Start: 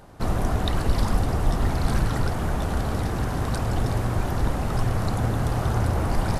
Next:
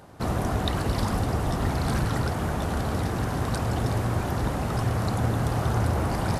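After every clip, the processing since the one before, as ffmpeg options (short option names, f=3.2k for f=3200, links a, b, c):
-af "highpass=67"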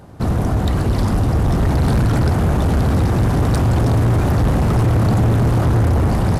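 -af "lowshelf=f=370:g=10,dynaudnorm=f=580:g=5:m=11.5dB,asoftclip=type=hard:threshold=-14dB,volume=2dB"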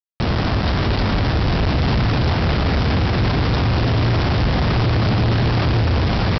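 -af "alimiter=limit=-17dB:level=0:latency=1,aresample=11025,acrusher=bits=3:mix=0:aa=0.000001,aresample=44100,volume=2dB"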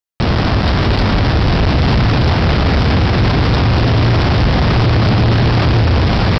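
-af "acontrast=44"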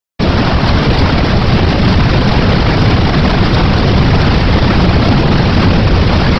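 -af "afftfilt=real='hypot(re,im)*cos(2*PI*random(0))':imag='hypot(re,im)*sin(2*PI*random(1))':win_size=512:overlap=0.75,apsyclip=11.5dB,volume=-2dB"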